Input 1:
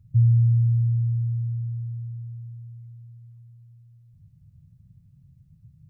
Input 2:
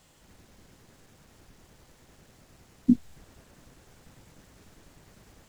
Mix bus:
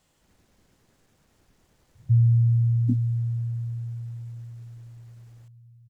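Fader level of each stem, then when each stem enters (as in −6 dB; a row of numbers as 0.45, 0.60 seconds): −1.0, −7.5 decibels; 1.95, 0.00 seconds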